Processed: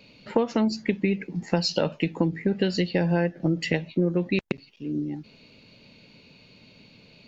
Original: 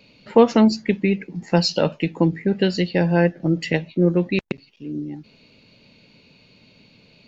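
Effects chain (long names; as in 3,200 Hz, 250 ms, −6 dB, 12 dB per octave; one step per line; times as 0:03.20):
downward compressor 8 to 1, threshold −19 dBFS, peak gain reduction 12.5 dB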